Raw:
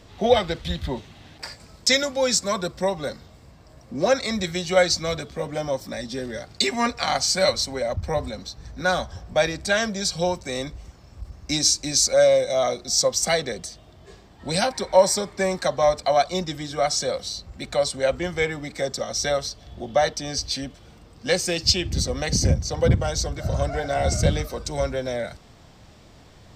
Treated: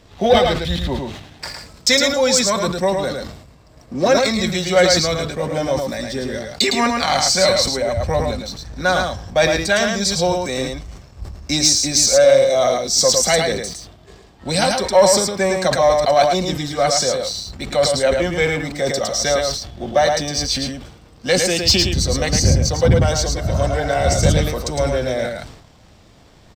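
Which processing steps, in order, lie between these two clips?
waveshaping leveller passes 1; delay 109 ms -4.5 dB; decay stretcher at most 70 dB/s; trim +1 dB

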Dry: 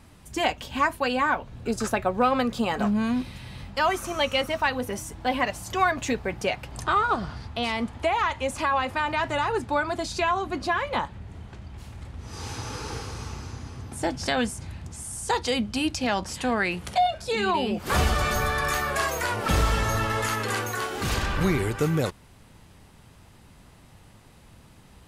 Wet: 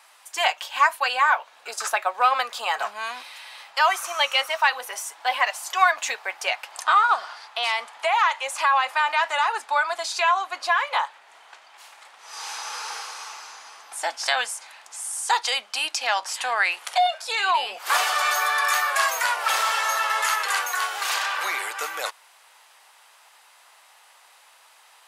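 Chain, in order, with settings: high-pass 760 Hz 24 dB/octave; trim +5.5 dB

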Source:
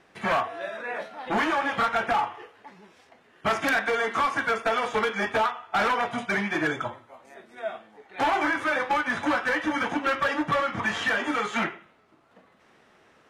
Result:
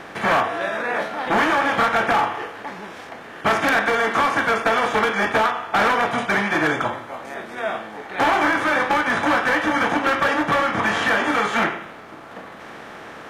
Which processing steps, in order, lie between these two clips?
spectral levelling over time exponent 0.6; trim +2 dB

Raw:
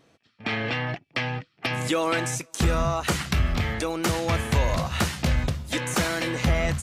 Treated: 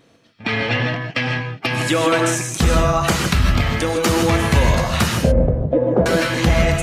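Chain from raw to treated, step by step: coarse spectral quantiser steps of 15 dB; 5.15–6.06 s: resonant low-pass 540 Hz, resonance Q 3.9; gated-style reverb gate 180 ms rising, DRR 3 dB; trim +6.5 dB

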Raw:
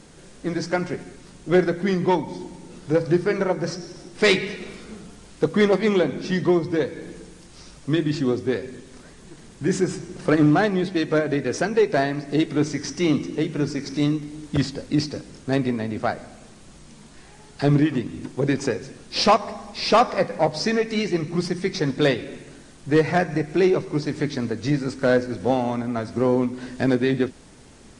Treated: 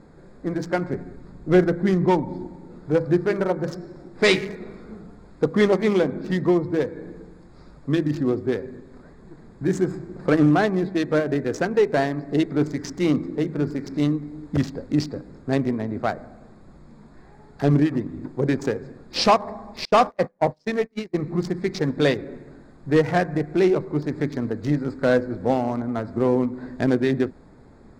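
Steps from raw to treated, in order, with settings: local Wiener filter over 15 samples; 0.90–2.47 s: bass shelf 180 Hz +6.5 dB; 19.85–21.15 s: gate -21 dBFS, range -36 dB

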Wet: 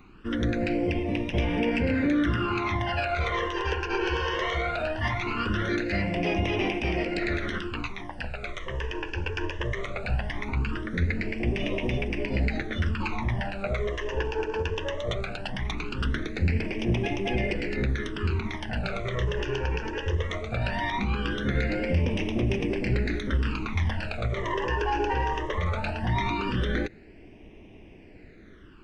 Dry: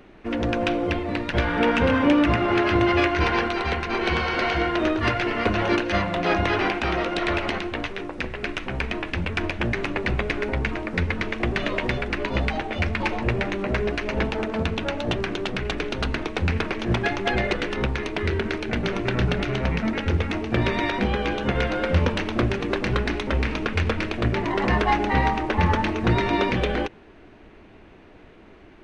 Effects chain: peak limiter -15.5 dBFS, peak gain reduction 7.5 dB; phase shifter stages 12, 0.19 Hz, lowest notch 210–1400 Hz

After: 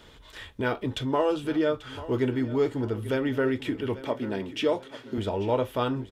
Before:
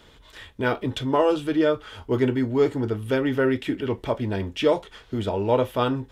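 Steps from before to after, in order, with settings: 4.01–5.18 s: Chebyshev high-pass 210 Hz, order 2; in parallel at +1.5 dB: compression, threshold -31 dBFS, peak gain reduction 15 dB; on the sum: feedback delay 839 ms, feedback 38%, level -16 dB; trim -6.5 dB

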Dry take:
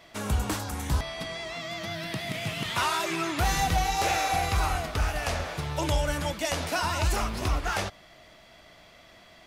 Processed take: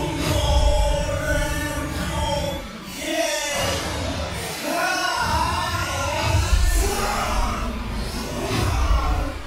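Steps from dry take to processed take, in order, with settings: Paulstretch 5.3×, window 0.05 s, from 5.84 s; trim +5 dB

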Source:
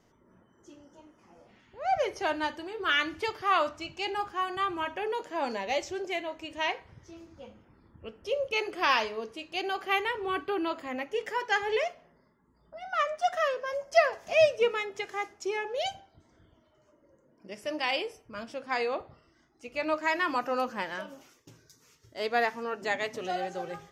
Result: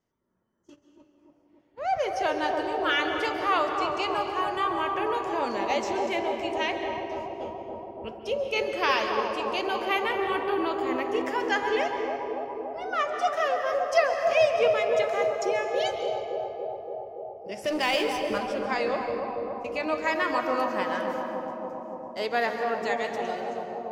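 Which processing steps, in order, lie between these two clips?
fade out at the end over 1.32 s; gate -49 dBFS, range -21 dB; in parallel at +1 dB: compression, threshold -38 dBFS, peak gain reduction 20.5 dB; 17.64–18.38 s: on the sum: power-law waveshaper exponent 0.7; bucket-brigade echo 284 ms, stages 2048, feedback 77%, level -4 dB; on a send at -6 dB: reverberation RT60 2.5 s, pre-delay 128 ms; on the sum: trim -1.5 dB

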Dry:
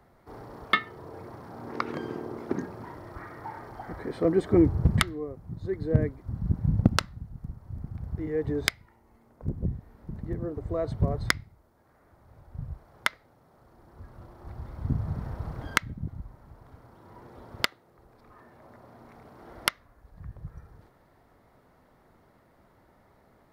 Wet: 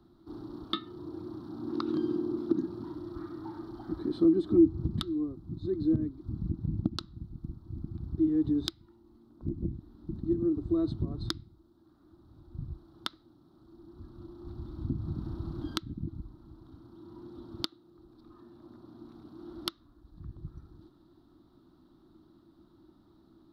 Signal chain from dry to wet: FFT filter 120 Hz 0 dB, 330 Hz +5 dB, 470 Hz -15 dB, 1.3 kHz -3 dB, 2.1 kHz -21 dB, 3.8 kHz +8 dB, 6.5 kHz -8 dB; compression 3:1, threshold -28 dBFS, peak gain reduction 13 dB; peaking EQ 330 Hz +10.5 dB 0.43 oct; trim -2.5 dB

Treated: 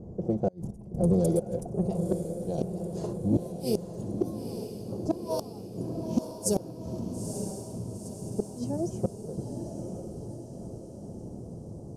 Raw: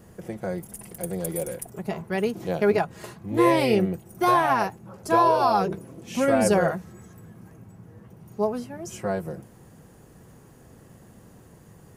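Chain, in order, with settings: level-controlled noise filter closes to 740 Hz, open at -18 dBFS; trance gate "xxx.xxxx.x.x" 64 bpm -12 dB; inverted gate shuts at -19 dBFS, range -35 dB; 0.53–1.14 s: bass shelf 250 Hz +8 dB; saturation -22.5 dBFS, distortion -17 dB; FFT filter 360 Hz 0 dB, 710 Hz -3 dB, 1.9 kHz -26 dB, 5.9 kHz +11 dB; on a send: echo that smears into a reverb 916 ms, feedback 56%, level -7 dB; on the sum: trim +8 dB

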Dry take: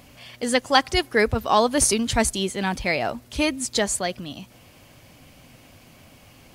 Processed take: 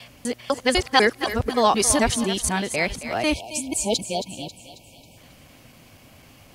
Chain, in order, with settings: time reversed locally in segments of 249 ms; thinning echo 271 ms, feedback 46%, high-pass 510 Hz, level -10.5 dB; spectral selection erased 3.34–5.17 s, 1–2.2 kHz

